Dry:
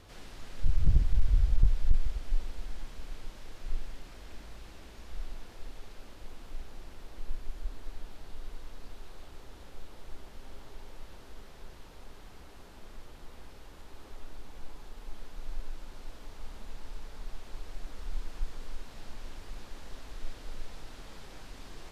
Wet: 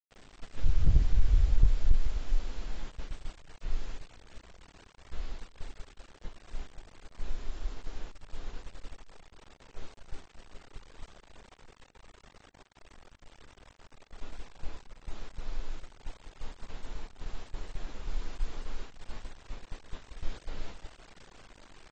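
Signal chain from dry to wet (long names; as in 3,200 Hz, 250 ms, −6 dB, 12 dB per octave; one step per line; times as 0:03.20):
low-pass that shuts in the quiet parts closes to 2,500 Hz, open at −21 dBFS
noise gate −36 dBFS, range −15 dB
in parallel at −2.5 dB: downward compressor 5 to 1, threshold −41 dBFS, peak gain reduction 21.5 dB
on the sum: bit reduction 9 bits
on a send: single-tap delay 231 ms −21 dB
on the sum: AAC 24 kbit/s 24,000 Hz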